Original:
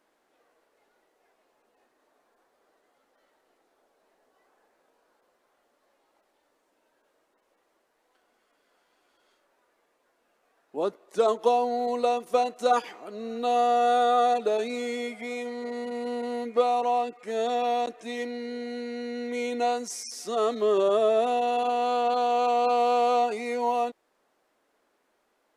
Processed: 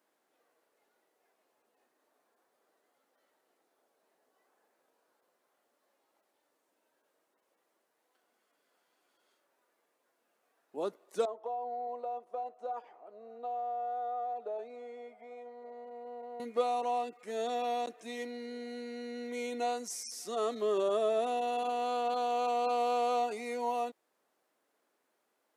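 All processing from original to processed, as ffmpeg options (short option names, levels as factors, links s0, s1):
-filter_complex "[0:a]asettb=1/sr,asplit=3[s0][s1][s2];[s0]atrim=end=11.254[s3];[s1]atrim=start=11.25:end=16.4,asetpts=PTS-STARTPTS,afade=t=in:d=0.004:c=qsin,afade=t=out:st=5.146:d=0.004:c=qsin,bandpass=f=700:t=q:w=2.2,acompressor=threshold=0.0501:ratio=6:attack=3.2:release=140:knee=1:detection=peak[s4];[s2]atrim=start=16.396[s5];[s3][s4]acrossfade=d=0.004:c1=hsin:c2=qsin[s6];[s6][s5]acrossfade=d=0.004:c1=qsin:c2=hsin,highpass=110,highshelf=f=8900:g=9.5,volume=0.422"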